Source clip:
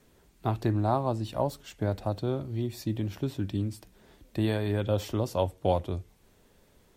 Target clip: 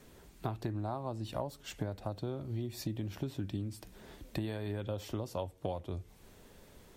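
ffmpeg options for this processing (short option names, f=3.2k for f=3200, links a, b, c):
-af "acompressor=threshold=-39dB:ratio=6,volume=4.5dB"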